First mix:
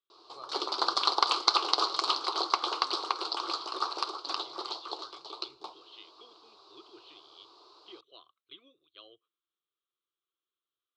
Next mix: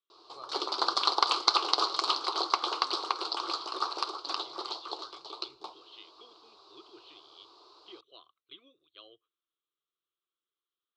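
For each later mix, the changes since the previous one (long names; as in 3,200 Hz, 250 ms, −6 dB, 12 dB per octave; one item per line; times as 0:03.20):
master: remove high-pass filter 56 Hz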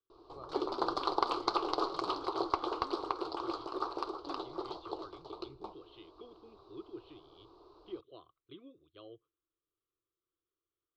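background −4.0 dB
master: remove meter weighting curve ITU-R 468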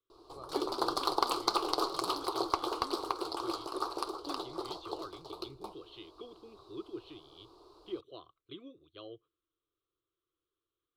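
speech +3.5 dB
master: remove high-frequency loss of the air 170 metres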